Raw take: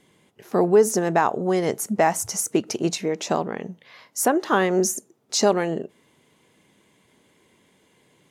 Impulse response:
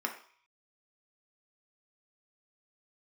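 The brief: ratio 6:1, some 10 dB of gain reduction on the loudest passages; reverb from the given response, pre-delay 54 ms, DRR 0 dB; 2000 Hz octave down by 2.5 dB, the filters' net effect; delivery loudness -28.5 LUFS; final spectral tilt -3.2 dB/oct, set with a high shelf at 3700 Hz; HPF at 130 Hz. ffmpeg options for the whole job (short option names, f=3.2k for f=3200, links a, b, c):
-filter_complex "[0:a]highpass=130,equalizer=f=2k:t=o:g=-4.5,highshelf=f=3.7k:g=5,acompressor=threshold=-22dB:ratio=6,asplit=2[a][b];[1:a]atrim=start_sample=2205,adelay=54[c];[b][c]afir=irnorm=-1:irlink=0,volume=-5dB[d];[a][d]amix=inputs=2:normalize=0,volume=-3dB"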